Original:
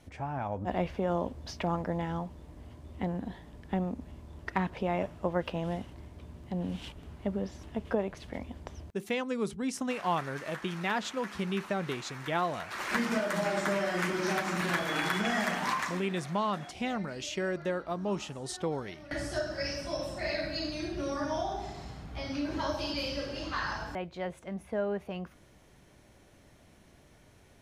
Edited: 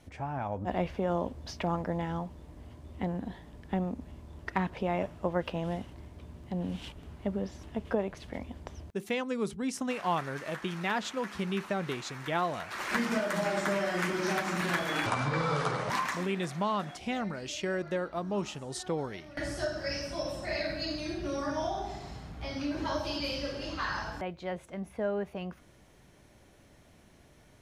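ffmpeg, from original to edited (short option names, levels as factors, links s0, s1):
-filter_complex "[0:a]asplit=3[s0][s1][s2];[s0]atrim=end=15.064[s3];[s1]atrim=start=15.06:end=15.64,asetpts=PTS-STARTPTS,asetrate=30429,aresample=44100[s4];[s2]atrim=start=15.636[s5];[s3][s4]acrossfade=d=0.004:c1=hsin:c2=hsin[s6];[s6][s5]acrossfade=d=0.004:c1=hsin:c2=hsin"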